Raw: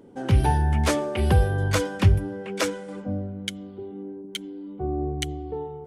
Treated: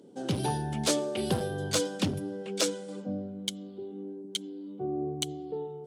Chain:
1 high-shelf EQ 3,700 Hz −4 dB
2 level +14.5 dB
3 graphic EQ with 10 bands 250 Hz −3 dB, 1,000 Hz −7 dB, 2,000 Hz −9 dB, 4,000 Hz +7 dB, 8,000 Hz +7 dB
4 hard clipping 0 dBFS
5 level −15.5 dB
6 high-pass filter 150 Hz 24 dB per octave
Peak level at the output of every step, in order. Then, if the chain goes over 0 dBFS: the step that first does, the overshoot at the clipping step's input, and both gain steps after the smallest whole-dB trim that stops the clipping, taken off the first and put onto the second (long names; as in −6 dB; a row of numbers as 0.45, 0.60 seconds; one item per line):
−7.5, +7.0, +8.5, 0.0, −15.5, −12.5 dBFS
step 2, 8.5 dB
step 2 +5.5 dB, step 5 −6.5 dB